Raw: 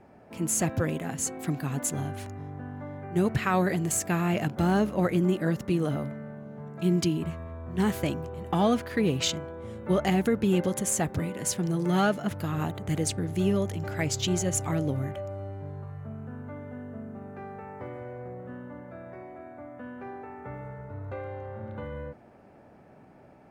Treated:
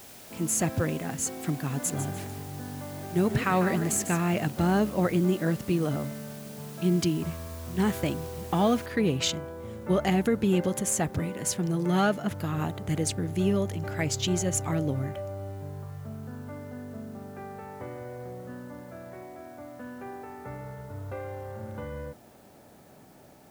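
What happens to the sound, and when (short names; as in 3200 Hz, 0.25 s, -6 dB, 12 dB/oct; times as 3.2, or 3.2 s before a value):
1.7–4.2 frequency-shifting echo 0.148 s, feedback 32%, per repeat +44 Hz, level -10 dB
8.86 noise floor step -49 dB -63 dB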